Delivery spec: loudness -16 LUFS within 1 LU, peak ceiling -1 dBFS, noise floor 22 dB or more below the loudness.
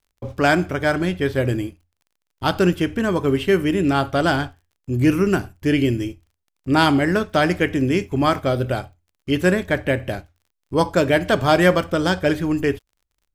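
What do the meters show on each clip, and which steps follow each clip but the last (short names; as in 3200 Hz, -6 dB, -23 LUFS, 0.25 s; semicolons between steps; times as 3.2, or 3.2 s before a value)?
ticks 32/s; loudness -20.0 LUFS; peak -1.5 dBFS; loudness target -16.0 LUFS
-> de-click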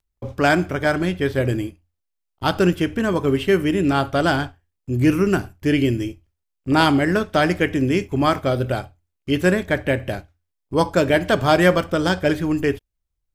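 ticks 0.37/s; loudness -20.0 LUFS; peak -1.5 dBFS; loudness target -16.0 LUFS
-> gain +4 dB; limiter -1 dBFS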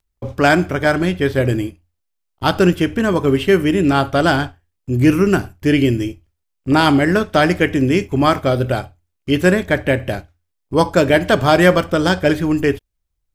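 loudness -16.0 LUFS; peak -1.0 dBFS; noise floor -74 dBFS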